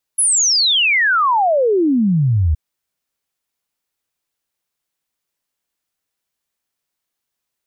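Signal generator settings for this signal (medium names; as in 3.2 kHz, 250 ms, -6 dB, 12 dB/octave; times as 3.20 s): log sweep 11 kHz -> 72 Hz 2.37 s -11.5 dBFS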